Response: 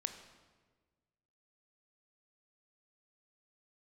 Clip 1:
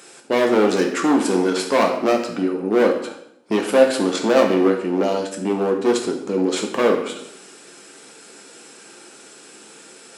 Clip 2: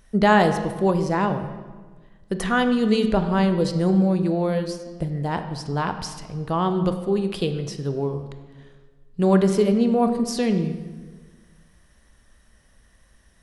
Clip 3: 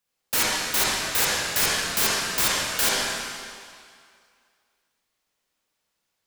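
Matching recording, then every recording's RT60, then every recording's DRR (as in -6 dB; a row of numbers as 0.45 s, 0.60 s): 2; 0.75 s, 1.4 s, 2.2 s; 2.0 dB, 7.5 dB, -7.0 dB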